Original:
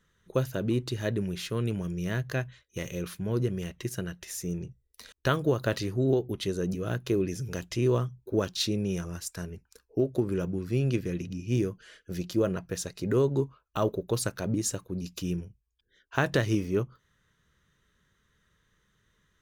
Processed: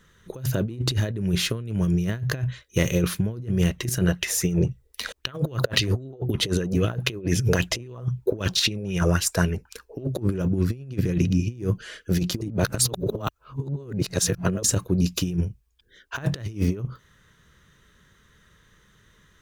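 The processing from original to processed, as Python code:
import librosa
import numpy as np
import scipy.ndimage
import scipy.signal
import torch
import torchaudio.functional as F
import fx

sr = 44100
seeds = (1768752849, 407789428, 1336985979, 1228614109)

y = fx.bell_lfo(x, sr, hz=3.8, low_hz=460.0, high_hz=3100.0, db=13, at=(4.08, 10.07))
y = fx.edit(y, sr, fx.reverse_span(start_s=12.41, length_s=2.22), tone=tone)
y = fx.dynamic_eq(y, sr, hz=110.0, q=0.86, threshold_db=-41.0, ratio=4.0, max_db=7)
y = fx.over_compress(y, sr, threshold_db=-30.0, ratio=-0.5)
y = y * 10.0 ** (6.5 / 20.0)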